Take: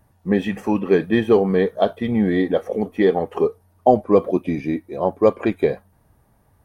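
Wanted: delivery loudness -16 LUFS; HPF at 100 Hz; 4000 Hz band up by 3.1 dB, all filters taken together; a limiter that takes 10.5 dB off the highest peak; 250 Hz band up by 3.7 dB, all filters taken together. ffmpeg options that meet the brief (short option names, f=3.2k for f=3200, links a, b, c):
-af "highpass=100,equalizer=f=250:t=o:g=5,equalizer=f=4k:t=o:g=4,volume=6.5dB,alimiter=limit=-4.5dB:level=0:latency=1"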